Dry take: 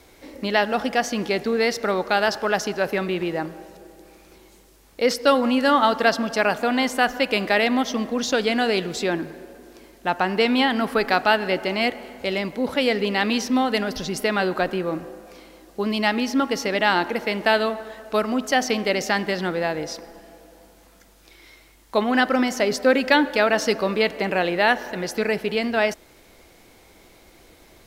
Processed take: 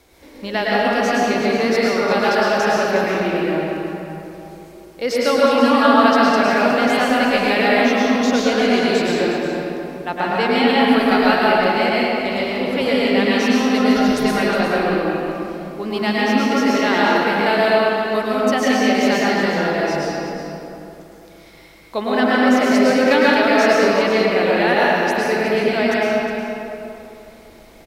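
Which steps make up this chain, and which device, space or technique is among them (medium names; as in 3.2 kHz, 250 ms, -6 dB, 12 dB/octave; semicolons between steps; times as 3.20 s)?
cave (delay 362 ms -10 dB; reverberation RT60 2.9 s, pre-delay 99 ms, DRR -6.5 dB); trim -3 dB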